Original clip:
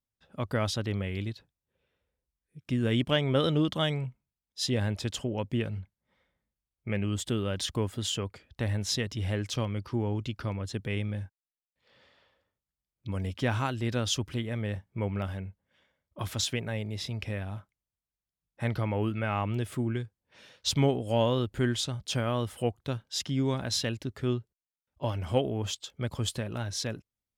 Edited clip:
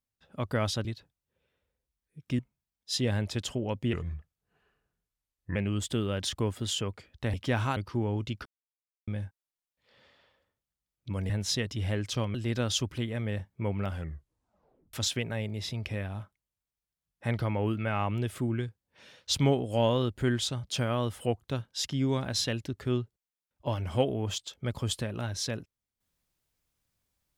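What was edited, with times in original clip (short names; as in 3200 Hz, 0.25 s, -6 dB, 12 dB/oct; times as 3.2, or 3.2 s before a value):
0.85–1.24 cut
2.78–4.08 cut
5.62–6.92 speed 80%
8.7–9.75 swap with 13.28–13.71
10.44–11.06 mute
15.27 tape stop 1.03 s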